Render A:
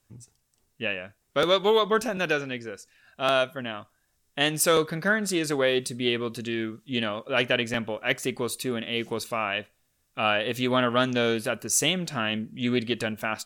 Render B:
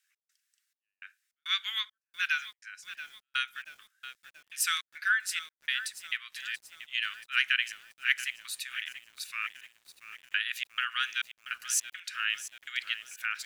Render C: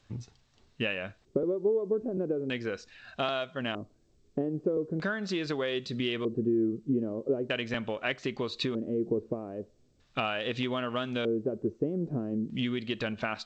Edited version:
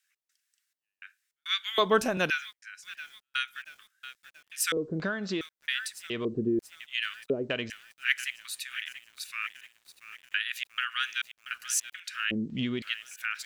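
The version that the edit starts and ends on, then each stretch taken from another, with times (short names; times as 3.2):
B
1.78–2.3 from A
4.72–5.41 from C
6.1–6.59 from C
7.3–7.7 from C
12.31–12.82 from C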